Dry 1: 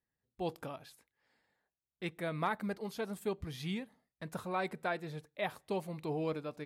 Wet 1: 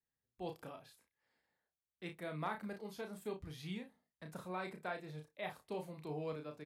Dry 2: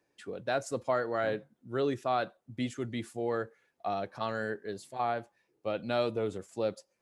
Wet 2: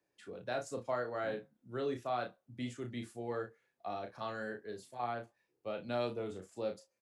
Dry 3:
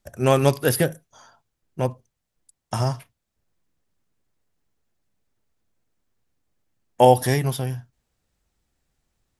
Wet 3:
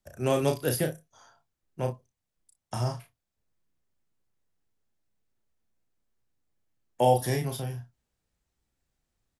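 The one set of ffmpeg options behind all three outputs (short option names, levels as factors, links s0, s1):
-filter_complex "[0:a]acrossover=split=230|900|2200[s0][s1][s2][s3];[s2]alimiter=level_in=1.26:limit=0.0631:level=0:latency=1:release=414,volume=0.794[s4];[s0][s1][s4][s3]amix=inputs=4:normalize=0,aecho=1:1:33|59:0.531|0.15,volume=0.422"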